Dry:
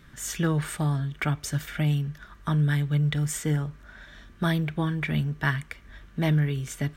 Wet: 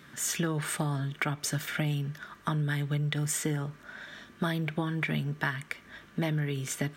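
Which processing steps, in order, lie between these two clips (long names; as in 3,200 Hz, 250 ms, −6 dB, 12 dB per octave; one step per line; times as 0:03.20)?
high-pass filter 180 Hz 12 dB per octave
downward compressor, threshold −30 dBFS, peak gain reduction 9.5 dB
level +3.5 dB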